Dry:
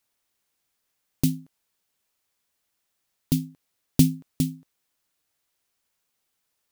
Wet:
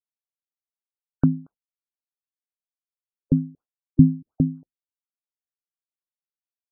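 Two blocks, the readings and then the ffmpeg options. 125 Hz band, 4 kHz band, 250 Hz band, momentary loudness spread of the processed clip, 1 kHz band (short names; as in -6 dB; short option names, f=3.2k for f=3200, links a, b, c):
+4.0 dB, under -40 dB, +4.5 dB, 16 LU, n/a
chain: -filter_complex "[0:a]agate=range=-33dB:threshold=-42dB:ratio=3:detection=peak,asplit=2[a][b];[b]adynamicsmooth=sensitivity=2:basefreq=3.3k,volume=-2dB[c];[a][c]amix=inputs=2:normalize=0,crystalizer=i=9:c=0,afftfilt=real='re*lt(b*sr/1024,300*pow(1600/300,0.5+0.5*sin(2*PI*4.2*pts/sr)))':imag='im*lt(b*sr/1024,300*pow(1600/300,0.5+0.5*sin(2*PI*4.2*pts/sr)))':win_size=1024:overlap=0.75,volume=-1dB"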